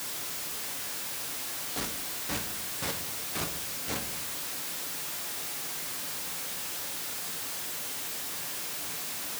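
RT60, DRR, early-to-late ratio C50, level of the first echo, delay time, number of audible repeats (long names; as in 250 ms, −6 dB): 0.65 s, 4.0 dB, 11.0 dB, no echo audible, no echo audible, no echo audible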